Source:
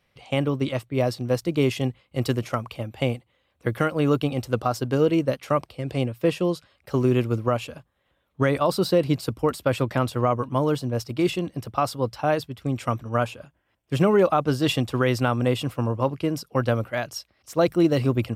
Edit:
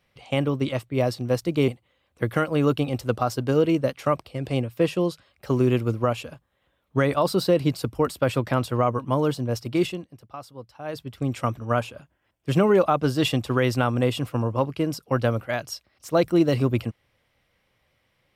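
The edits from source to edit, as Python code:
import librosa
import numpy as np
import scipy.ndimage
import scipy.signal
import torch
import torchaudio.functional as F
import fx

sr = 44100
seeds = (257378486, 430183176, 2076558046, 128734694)

y = fx.edit(x, sr, fx.cut(start_s=1.68, length_s=1.44),
    fx.fade_down_up(start_s=11.25, length_s=1.29, db=-15.0, fade_s=0.26), tone=tone)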